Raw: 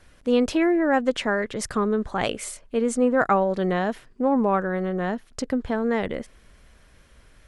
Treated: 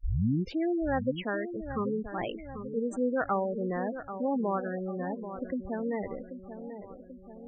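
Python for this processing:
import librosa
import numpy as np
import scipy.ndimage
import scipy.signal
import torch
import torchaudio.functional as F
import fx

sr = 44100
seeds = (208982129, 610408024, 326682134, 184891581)

p1 = fx.tape_start_head(x, sr, length_s=0.57)
p2 = fx.env_lowpass(p1, sr, base_hz=2400.0, full_db=-15.5)
p3 = p2 + fx.echo_filtered(p2, sr, ms=787, feedback_pct=58, hz=2100.0, wet_db=-10, dry=0)
p4 = fx.spec_gate(p3, sr, threshold_db=-15, keep='strong')
y = p4 * 10.0 ** (-8.5 / 20.0)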